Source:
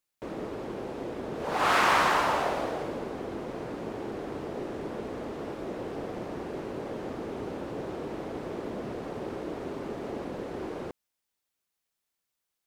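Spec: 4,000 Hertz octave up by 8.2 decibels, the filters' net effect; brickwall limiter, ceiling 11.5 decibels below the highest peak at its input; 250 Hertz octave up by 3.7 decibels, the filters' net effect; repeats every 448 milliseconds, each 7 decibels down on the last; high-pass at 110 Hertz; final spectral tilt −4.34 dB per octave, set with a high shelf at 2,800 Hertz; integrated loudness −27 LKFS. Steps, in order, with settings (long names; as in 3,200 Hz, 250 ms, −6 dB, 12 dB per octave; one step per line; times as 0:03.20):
high-pass filter 110 Hz
parametric band 250 Hz +5 dB
high-shelf EQ 2,800 Hz +6.5 dB
parametric band 4,000 Hz +5.5 dB
brickwall limiter −19 dBFS
repeating echo 448 ms, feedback 45%, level −7 dB
level +5 dB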